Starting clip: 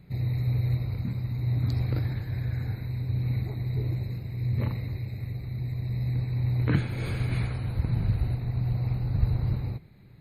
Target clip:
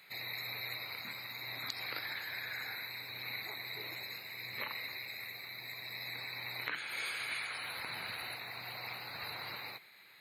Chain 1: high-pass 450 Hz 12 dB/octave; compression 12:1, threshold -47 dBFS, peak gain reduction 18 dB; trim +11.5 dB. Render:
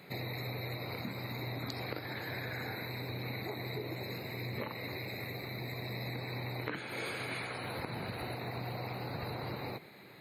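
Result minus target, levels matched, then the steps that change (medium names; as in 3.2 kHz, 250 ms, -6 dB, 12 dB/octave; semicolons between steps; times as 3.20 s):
500 Hz band +12.0 dB
change: high-pass 1.5 kHz 12 dB/octave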